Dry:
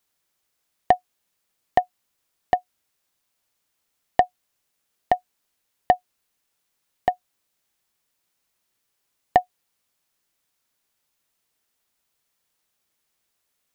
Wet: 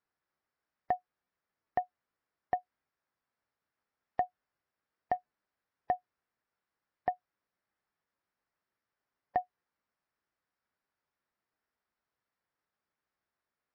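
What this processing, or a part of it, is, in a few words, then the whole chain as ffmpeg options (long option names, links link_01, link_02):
low-bitrate web radio: -af "highpass=frequency=41:poles=1,highshelf=frequency=2300:width_type=q:width=1.5:gain=-10,dynaudnorm=framelen=780:gausssize=7:maxgain=10dB,alimiter=limit=-10.5dB:level=0:latency=1:release=48,volume=-6.5dB" -ar 16000 -c:a libmp3lame -b:a 24k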